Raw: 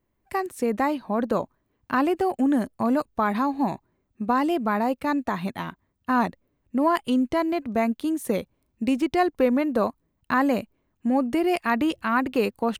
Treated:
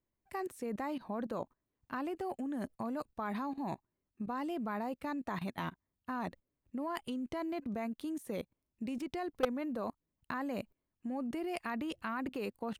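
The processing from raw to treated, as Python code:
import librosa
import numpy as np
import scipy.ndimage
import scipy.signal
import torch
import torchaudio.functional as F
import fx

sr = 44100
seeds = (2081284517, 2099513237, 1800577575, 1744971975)

y = fx.level_steps(x, sr, step_db=17)
y = 10.0 ** (-16.5 / 20.0) * (np.abs((y / 10.0 ** (-16.5 / 20.0) + 3.0) % 4.0 - 2.0) - 1.0)
y = y * librosa.db_to_amplitude(-3.0)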